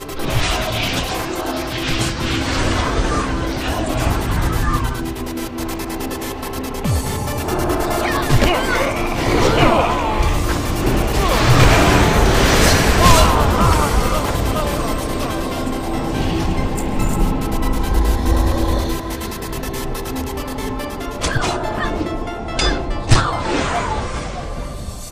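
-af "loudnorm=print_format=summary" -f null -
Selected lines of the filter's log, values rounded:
Input Integrated:    -18.6 LUFS
Input True Peak:      -1.4 dBTP
Input LRA:             7.4 LU
Input Threshold:     -28.7 LUFS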